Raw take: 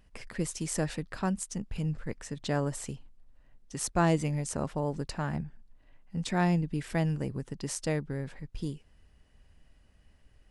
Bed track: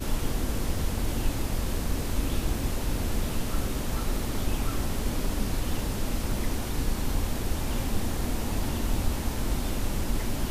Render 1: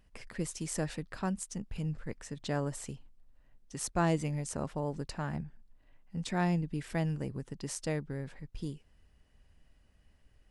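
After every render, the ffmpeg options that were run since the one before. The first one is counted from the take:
-af "volume=-3.5dB"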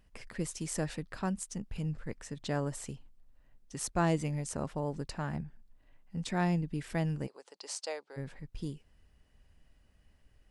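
-filter_complex "[0:a]asplit=3[a][b][c];[a]afade=t=out:st=7.26:d=0.02[d];[b]highpass=f=490:w=0.5412,highpass=f=490:w=1.3066,equalizer=f=830:t=q:w=4:g=3,equalizer=f=1.8k:t=q:w=4:g=-5,equalizer=f=4.5k:t=q:w=4:g=7,lowpass=f=9.2k:w=0.5412,lowpass=f=9.2k:w=1.3066,afade=t=in:st=7.26:d=0.02,afade=t=out:st=8.16:d=0.02[e];[c]afade=t=in:st=8.16:d=0.02[f];[d][e][f]amix=inputs=3:normalize=0"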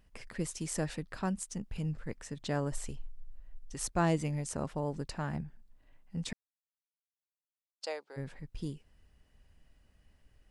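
-filter_complex "[0:a]asplit=3[a][b][c];[a]afade=t=out:st=2.71:d=0.02[d];[b]asubboost=boost=7.5:cutoff=59,afade=t=in:st=2.71:d=0.02,afade=t=out:st=3.86:d=0.02[e];[c]afade=t=in:st=3.86:d=0.02[f];[d][e][f]amix=inputs=3:normalize=0,asplit=3[g][h][i];[g]atrim=end=6.33,asetpts=PTS-STARTPTS,afade=t=out:st=6.326:d=0.004:c=hsin[j];[h]atrim=start=6.33:end=7.81,asetpts=PTS-STARTPTS,volume=0[k];[i]atrim=start=7.81,asetpts=PTS-STARTPTS,afade=t=in:d=0.004:c=hsin[l];[j][k][l]concat=n=3:v=0:a=1"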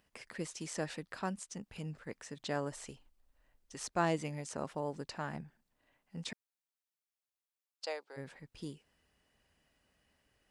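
-filter_complex "[0:a]acrossover=split=6900[a][b];[b]acompressor=threshold=-55dB:ratio=4:attack=1:release=60[c];[a][c]amix=inputs=2:normalize=0,highpass=f=350:p=1"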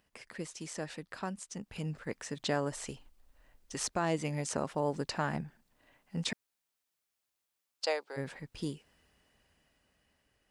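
-af "alimiter=level_in=4dB:limit=-24dB:level=0:latency=1:release=485,volume=-4dB,dynaudnorm=f=410:g=9:m=8dB"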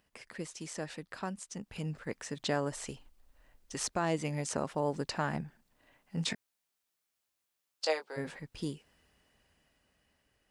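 -filter_complex "[0:a]asettb=1/sr,asplit=3[a][b][c];[a]atrim=end=6.164[d];[b]atrim=start=6.16:end=8.39,asetpts=PTS-STARTPTS,afade=t=in:d=0.004:c=qsin,afade=t=out:st=2.226:d=0.004:c=qsin,asplit=2[e][f];[f]adelay=19,volume=-7dB[g];[e][g]amix=inputs=2:normalize=0,atrim=end_sample=98343[h];[c]atrim=start=8.386[i];[d][h]acrossfade=d=0.004:c1=hsin:c2=qsin[j];[j][i]acrossfade=d=0.004:c1=qsin:c2=hsin"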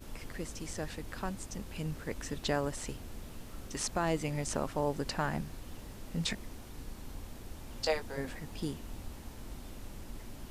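-filter_complex "[1:a]volume=-17dB[a];[0:a][a]amix=inputs=2:normalize=0"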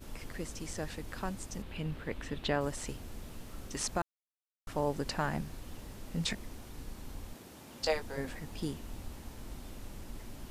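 -filter_complex "[0:a]asettb=1/sr,asplit=3[a][b][c];[a]atrim=end=1.624[d];[b]atrim=start=1.62:end=2.61,asetpts=PTS-STARTPTS,afade=t=in:d=0.004:c=qsin,afade=t=out:st=0.986:d=0.004:c=qsin,highshelf=f=4.5k:t=q:w=1.5:g=-8.5[e];[c]atrim=start=2.606[f];[d][e]acrossfade=d=0.004:c1=hsin:c2=qsin[g];[g][f]acrossfade=d=0.004:c1=qsin:c2=hsin,asettb=1/sr,asplit=3[h][i][j];[h]atrim=end=7.344[k];[i]atrim=start=7.34:end=7.83,asetpts=PTS-STARTPTS,afade=t=in:d=0.004:c=qsin,afade=t=out:st=0.486:d=0.004:c=qsin,highpass=150[l];[j]atrim=start=7.826[m];[k][l]acrossfade=d=0.004:c1=hsin:c2=qsin[n];[n][m]acrossfade=d=0.004:c1=qsin:c2=hsin,asplit=3[o][p][q];[o]atrim=end=4.02,asetpts=PTS-STARTPTS,afade=t=out:st=4.016:d=0.004:c=hsin[r];[p]atrim=start=4.02:end=4.67,asetpts=PTS-STARTPTS,volume=0[s];[q]atrim=start=4.67,asetpts=PTS-STARTPTS,afade=t=in:d=0.004:c=hsin[t];[r][s][t]concat=n=3:v=0:a=1"

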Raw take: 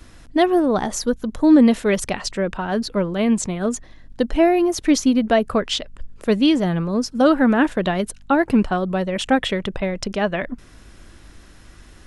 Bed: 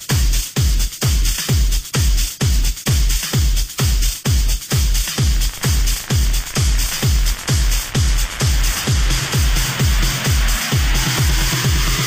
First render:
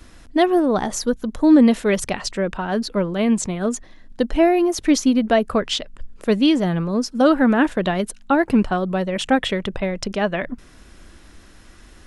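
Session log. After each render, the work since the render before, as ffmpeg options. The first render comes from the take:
-af "bandreject=f=50:t=h:w=4,bandreject=f=100:t=h:w=4,bandreject=f=150:t=h:w=4"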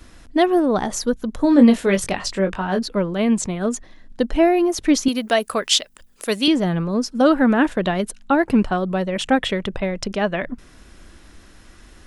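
-filter_complex "[0:a]asettb=1/sr,asplit=3[a][b][c];[a]atrim=end=1.374[d];[b]atrim=start=1.37:end=2.79,asetpts=PTS-STARTPTS,afade=t=in:d=0.004:c=qsin,afade=t=out:st=1.416:d=0.004:c=qsin,asplit=2[e][f];[f]adelay=21,volume=-6dB[g];[e][g]amix=inputs=2:normalize=0,atrim=end_sample=62622[h];[c]atrim=start=2.786[i];[d][h]acrossfade=d=0.004:c1=hsin:c2=qsin[j];[j][i]acrossfade=d=0.004:c1=qsin:c2=hsin,asettb=1/sr,asplit=3[k][l][m];[k]atrim=end=5.084[n];[l]atrim=start=5.08:end=6.48,asetpts=PTS-STARTPTS,afade=t=in:d=0.004:c=qsin,afade=t=out:st=1.396:d=0.004:c=qsin,aemphasis=mode=production:type=riaa[o];[m]atrim=start=6.476[p];[n][o]acrossfade=d=0.004:c1=hsin:c2=qsin[q];[q][p]acrossfade=d=0.004:c1=qsin:c2=hsin"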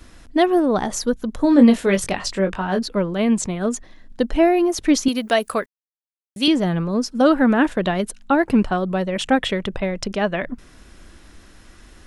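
-filter_complex "[0:a]asplit=3[a][b][c];[a]atrim=end=5.66,asetpts=PTS-STARTPTS,afade=t=out:st=5.656:d=0.004:c=hsin[d];[b]atrim=start=5.66:end=6.36,asetpts=PTS-STARTPTS,volume=0[e];[c]atrim=start=6.36,asetpts=PTS-STARTPTS,afade=t=in:d=0.004:c=hsin[f];[d][e][f]concat=n=3:v=0:a=1"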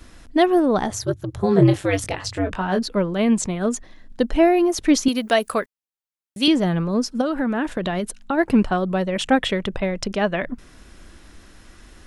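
-filter_complex "[0:a]asettb=1/sr,asplit=3[a][b][c];[a]atrim=end=0.904[d];[b]atrim=start=0.9:end=2.51,asetpts=PTS-STARTPTS,afade=t=in:d=0.004:c=qsin,afade=t=out:st=1.606:d=0.004:c=qsin,aeval=exprs='val(0)*sin(2*PI*100*n/s)':c=same[e];[c]atrim=start=2.506[f];[d][e]acrossfade=d=0.004:c1=hsin:c2=qsin[g];[g][f]acrossfade=d=0.004:c1=qsin:c2=hsin,asplit=3[h][i][j];[h]afade=t=out:st=7.2:d=0.02[k];[i]acompressor=threshold=-19dB:ratio=6:attack=3.2:release=140:knee=1:detection=peak,afade=t=in:st=7.2:d=0.02,afade=t=out:st=8.37:d=0.02[l];[j]afade=t=in:st=8.37:d=0.02[m];[k][l][m]amix=inputs=3:normalize=0"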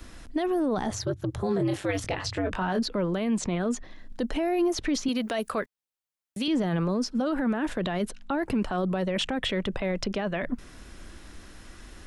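-filter_complex "[0:a]acrossover=split=200|5600[a][b][c];[a]acompressor=threshold=-31dB:ratio=4[d];[b]acompressor=threshold=-20dB:ratio=4[e];[c]acompressor=threshold=-48dB:ratio=4[f];[d][e][f]amix=inputs=3:normalize=0,alimiter=limit=-19dB:level=0:latency=1:release=14"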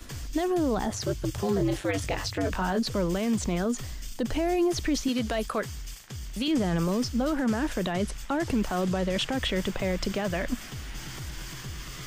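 -filter_complex "[1:a]volume=-22.5dB[a];[0:a][a]amix=inputs=2:normalize=0"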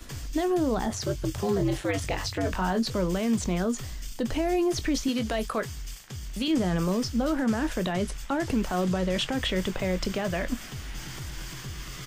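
-filter_complex "[0:a]asplit=2[a][b];[b]adelay=22,volume=-13dB[c];[a][c]amix=inputs=2:normalize=0"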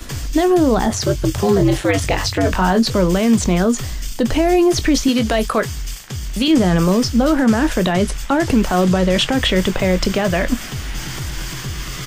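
-af "volume=11.5dB"

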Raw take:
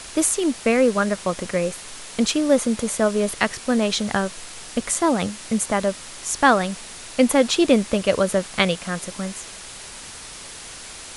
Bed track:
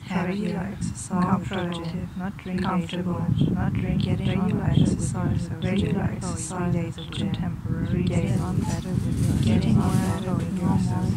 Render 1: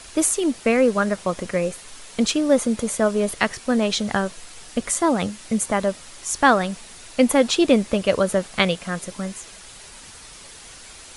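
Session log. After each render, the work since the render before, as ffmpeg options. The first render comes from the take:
-af "afftdn=nr=6:nf=-38"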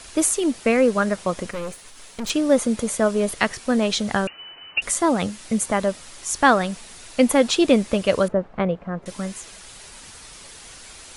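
-filter_complex "[0:a]asettb=1/sr,asplit=3[a][b][c];[a]atrim=end=1.514[d];[b]atrim=start=1.51:end=2.3,asetpts=PTS-STARTPTS,afade=t=in:d=0.004:c=qsin,afade=t=out:st=0.786:d=0.004:c=qsin,aeval=exprs='(tanh(20*val(0)+0.65)-tanh(0.65))/20':c=same[e];[c]atrim=start=2.296[f];[d][e]acrossfade=d=0.004:c1=hsin:c2=qsin[g];[g][f]acrossfade=d=0.004:c1=qsin:c2=hsin,asettb=1/sr,asplit=3[h][i][j];[h]atrim=end=4.274[k];[i]atrim=start=4.27:end=4.82,asetpts=PTS-STARTPTS,afade=t=in:d=0.004:c=qsin,afade=t=out:st=0.546:d=0.004:c=qsin,lowpass=f=2.6k:t=q:w=0.5098,lowpass=f=2.6k:t=q:w=0.6013,lowpass=f=2.6k:t=q:w=0.9,lowpass=f=2.6k:t=q:w=2.563,afreqshift=-3000[l];[j]atrim=start=4.816[m];[k][l]acrossfade=d=0.004:c1=hsin:c2=qsin[n];[n][m]acrossfade=d=0.004:c1=qsin:c2=hsin,asettb=1/sr,asplit=3[o][p][q];[o]atrim=end=8.284[r];[p]atrim=start=8.28:end=9.06,asetpts=PTS-STARTPTS,afade=t=in:d=0.004:c=qsin,afade=t=out:st=0.776:d=0.004:c=qsin,lowpass=1k[s];[q]atrim=start=9.056[t];[r][s]acrossfade=d=0.004:c1=hsin:c2=qsin[u];[u][t]acrossfade=d=0.004:c1=qsin:c2=hsin"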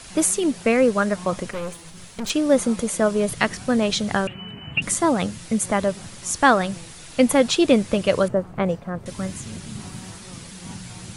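-filter_complex "[1:a]volume=-15.5dB[a];[0:a][a]amix=inputs=2:normalize=0"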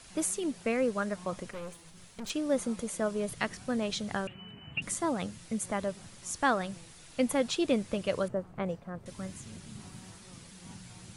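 -af "volume=-11.5dB"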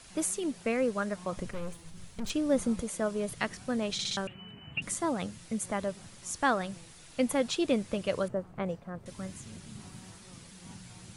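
-filter_complex "[0:a]asettb=1/sr,asplit=3[a][b][c];[a]atrim=end=1.374[d];[b]atrim=start=1.37:end=2.83,asetpts=PTS-STARTPTS,afade=t=in:d=0.004:c=qsin,afade=t=out:st=1.456:d=0.004:c=qsin,lowshelf=f=170:g=11.5[e];[c]atrim=start=2.826[f];[d][e]acrossfade=d=0.004:c1=hsin:c2=qsin[g];[g][f]acrossfade=d=0.004:c1=qsin:c2=hsin,asplit=5[h][i][j][k][l];[h]atrim=end=3.992[m];[i]atrim=start=3.928:end=3.992[n];[j]atrim=start=3.928:end=3.992[o];[k]atrim=start=3.928:end=3.992[p];[l]atrim=start=4.168[q];[m][n]acrossfade=d=0.004:c1=hsin:c2=hsin[r];[r][o]acrossfade=d=0.004:c1=hsin:c2=hsin[s];[s][p]acrossfade=d=0.004:c1=hsin:c2=hsin[t];[t][q]acrossfade=d=0.004:c1=hsin:c2=hsin"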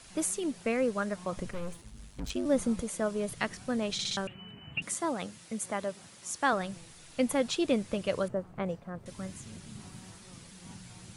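-filter_complex "[0:a]asettb=1/sr,asplit=3[a][b][c];[a]atrim=end=1.814[d];[b]atrim=start=1.81:end=2.46,asetpts=PTS-STARTPTS,afade=t=in:d=0.004:c=qsin,afade=t=out:st=0.646:d=0.004:c=qsin,aeval=exprs='val(0)*sin(2*PI*50*n/s)':c=same[e];[c]atrim=start=2.456[f];[d][e]acrossfade=d=0.004:c1=hsin:c2=qsin[g];[g][f]acrossfade=d=0.004:c1=qsin:c2=hsin,asettb=1/sr,asplit=3[h][i][j];[h]atrim=end=4.824[k];[i]atrim=start=4.82:end=6.53,asetpts=PTS-STARTPTS,afade=t=in:d=0.004:c=qsin,afade=t=out:st=1.706:d=0.004:c=qsin,highpass=f=250:p=1[l];[j]atrim=start=6.526[m];[k][l]acrossfade=d=0.004:c1=hsin:c2=qsin[n];[n][m]acrossfade=d=0.004:c1=qsin:c2=hsin"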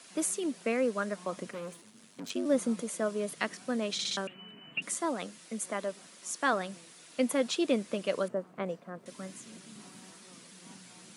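-af "highpass=f=200:w=0.5412,highpass=f=200:w=1.3066,bandreject=f=830:w=12"

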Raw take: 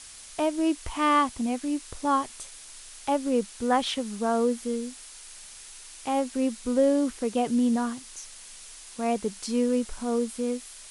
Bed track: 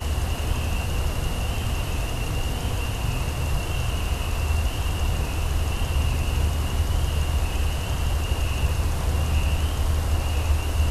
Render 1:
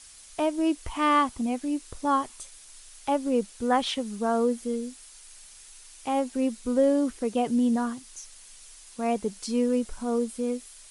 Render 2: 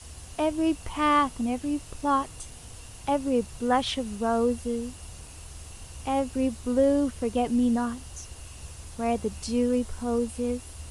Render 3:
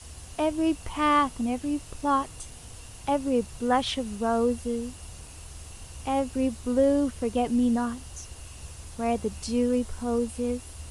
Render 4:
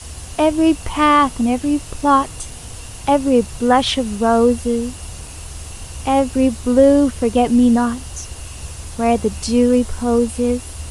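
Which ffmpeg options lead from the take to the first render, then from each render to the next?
-af "afftdn=nr=6:nf=-46"
-filter_complex "[1:a]volume=-20dB[a];[0:a][a]amix=inputs=2:normalize=0"
-af anull
-af "volume=11dB,alimiter=limit=-2dB:level=0:latency=1"

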